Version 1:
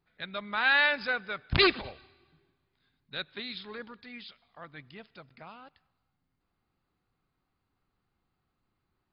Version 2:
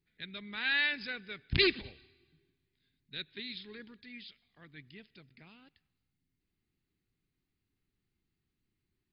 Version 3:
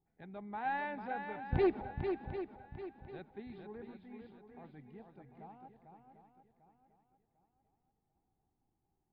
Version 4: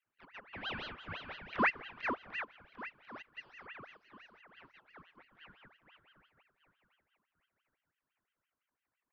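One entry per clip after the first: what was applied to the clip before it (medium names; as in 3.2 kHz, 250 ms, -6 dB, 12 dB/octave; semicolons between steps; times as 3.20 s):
high-order bell 860 Hz -14 dB; trim -3 dB
resonant low-pass 800 Hz, resonance Q 9.6; on a send: shuffle delay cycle 746 ms, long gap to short 1.5:1, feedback 33%, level -6.5 dB; on the sum: trim -1 dB
resonant low shelf 280 Hz -10 dB, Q 3; ring modulator with a swept carrier 1.5 kHz, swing 60%, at 5.9 Hz; trim -3.5 dB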